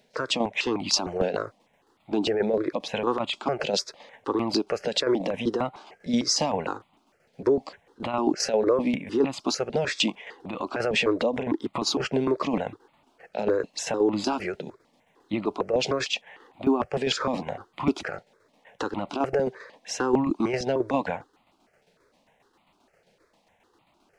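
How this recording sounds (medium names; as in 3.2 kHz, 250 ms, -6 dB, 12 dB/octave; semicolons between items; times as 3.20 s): tremolo saw down 7.5 Hz, depth 55%; notches that jump at a steady rate 6.6 Hz 310–1600 Hz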